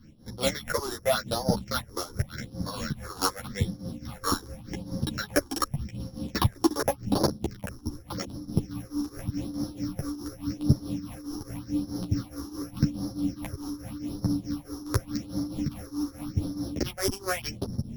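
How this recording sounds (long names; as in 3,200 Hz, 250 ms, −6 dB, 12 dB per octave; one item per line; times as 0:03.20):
a buzz of ramps at a fixed pitch in blocks of 8 samples
phaser sweep stages 6, 0.86 Hz, lowest notch 150–2,600 Hz
tremolo triangle 4.7 Hz, depth 85%
a shimmering, thickened sound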